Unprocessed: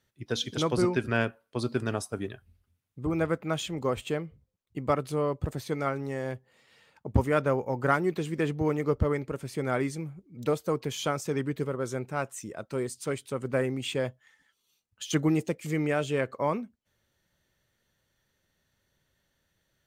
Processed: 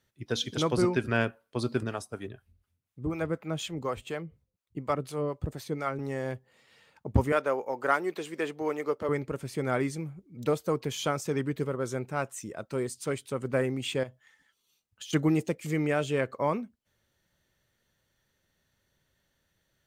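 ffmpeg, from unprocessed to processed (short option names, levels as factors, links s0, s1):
-filter_complex "[0:a]asettb=1/sr,asplit=3[s0][s1][s2];[s0]atrim=end=1.834[s3];[s1]atrim=start=1.83:end=5.99,asetpts=PTS-STARTPTS,afade=t=in:d=0.004:c=qsin,afade=t=out:st=4.156:d=0.004:c=qsin,acrossover=split=540[s4][s5];[s4]aeval=exprs='val(0)*(1-0.7/2+0.7/2*cos(2*PI*4.1*n/s))':c=same[s6];[s5]aeval=exprs='val(0)*(1-0.7/2-0.7/2*cos(2*PI*4.1*n/s))':c=same[s7];[s6][s7]amix=inputs=2:normalize=0[s8];[s2]atrim=start=5.986[s9];[s3][s8]acrossfade=d=0.004:c1=hsin:c2=qsin[s10];[s10][s9]acrossfade=d=0.004:c1=qsin:c2=hsin,asettb=1/sr,asplit=3[s11][s12][s13];[s11]atrim=end=7.324[s14];[s12]atrim=start=7.32:end=9.09,asetpts=PTS-STARTPTS,afade=t=in:d=0.004:c=qsin,afade=t=out:st=1.766:d=0.004:c=qsin,highpass=400[s15];[s13]atrim=start=9.086[s16];[s14][s15]acrossfade=d=0.004:c1=hsin:c2=qsin[s17];[s17][s16]acrossfade=d=0.004:c1=qsin:c2=hsin,asettb=1/sr,asplit=3[s18][s19][s20];[s18]atrim=end=14.034[s21];[s19]atrim=start=14.03:end=15.13,asetpts=PTS-STARTPTS,afade=t=in:d=0.004:c=qsin,afade=t=out:st=1.096:d=0.004:c=qsin,acompressor=threshold=0.0126:ratio=5:attack=3.2:release=140:knee=1:detection=peak[s22];[s20]atrim=start=15.126[s23];[s21][s22]acrossfade=d=0.004:c1=hsin:c2=qsin[s24];[s24][s23]acrossfade=d=0.004:c1=qsin:c2=hsin"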